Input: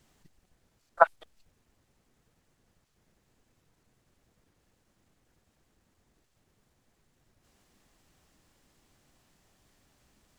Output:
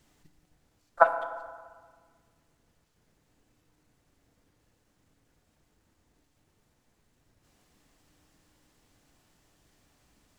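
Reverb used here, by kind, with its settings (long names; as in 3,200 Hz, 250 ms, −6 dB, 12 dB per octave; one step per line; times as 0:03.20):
feedback delay network reverb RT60 1.6 s, low-frequency decay 1×, high-frequency decay 0.55×, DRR 7 dB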